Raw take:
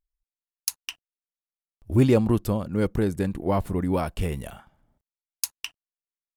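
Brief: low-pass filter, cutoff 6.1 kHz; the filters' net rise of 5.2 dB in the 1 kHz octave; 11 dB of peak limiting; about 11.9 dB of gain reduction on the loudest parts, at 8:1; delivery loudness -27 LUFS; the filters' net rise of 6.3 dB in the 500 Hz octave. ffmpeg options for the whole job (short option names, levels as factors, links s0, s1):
-af "lowpass=6100,equalizer=f=500:t=o:g=7,equalizer=f=1000:t=o:g=4,acompressor=threshold=0.0794:ratio=8,volume=2.24,alimiter=limit=0.141:level=0:latency=1"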